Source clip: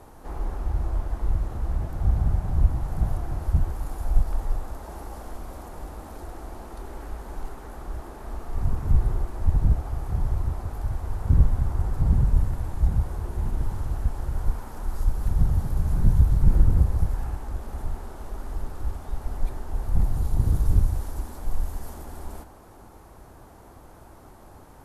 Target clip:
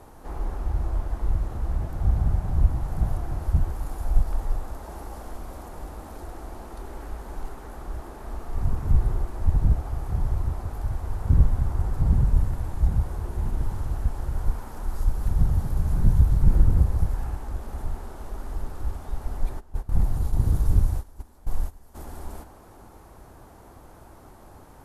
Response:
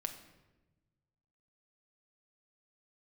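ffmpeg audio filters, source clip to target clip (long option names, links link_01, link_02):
-filter_complex "[0:a]asplit=3[link_01][link_02][link_03];[link_01]afade=type=out:start_time=19.59:duration=0.02[link_04];[link_02]agate=range=-16dB:threshold=-24dB:ratio=16:detection=peak,afade=type=in:start_time=19.59:duration=0.02,afade=type=out:start_time=21.94:duration=0.02[link_05];[link_03]afade=type=in:start_time=21.94:duration=0.02[link_06];[link_04][link_05][link_06]amix=inputs=3:normalize=0"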